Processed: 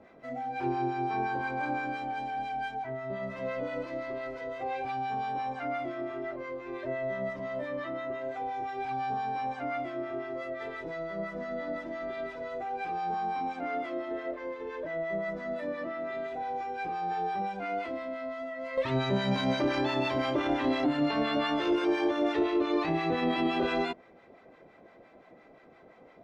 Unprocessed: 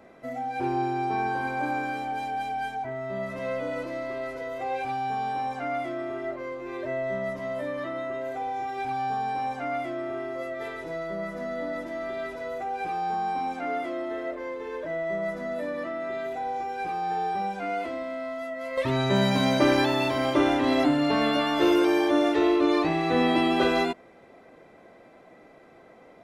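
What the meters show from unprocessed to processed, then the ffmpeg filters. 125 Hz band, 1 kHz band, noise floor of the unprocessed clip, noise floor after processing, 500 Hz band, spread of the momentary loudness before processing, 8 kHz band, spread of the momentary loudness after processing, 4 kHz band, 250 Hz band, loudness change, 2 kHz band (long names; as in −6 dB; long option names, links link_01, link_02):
−4.5 dB, −4.0 dB, −52 dBFS, −56 dBFS, −4.5 dB, 11 LU, below −10 dB, 9 LU, −6.0 dB, −5.5 dB, −5.0 dB, −4.5 dB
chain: -filter_complex "[0:a]lowpass=5000,alimiter=limit=-17dB:level=0:latency=1:release=18,acrossover=split=820[link_01][link_02];[link_01]aeval=exprs='val(0)*(1-0.7/2+0.7/2*cos(2*PI*5.8*n/s))':channel_layout=same[link_03];[link_02]aeval=exprs='val(0)*(1-0.7/2-0.7/2*cos(2*PI*5.8*n/s))':channel_layout=same[link_04];[link_03][link_04]amix=inputs=2:normalize=0"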